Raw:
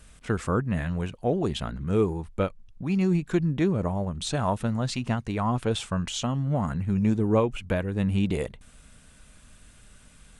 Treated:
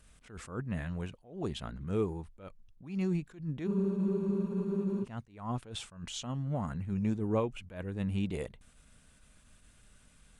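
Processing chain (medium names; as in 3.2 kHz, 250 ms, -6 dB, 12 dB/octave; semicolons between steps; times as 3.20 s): spectral freeze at 3.69 s, 1.33 s; attacks held to a fixed rise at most 130 dB/s; trim -8 dB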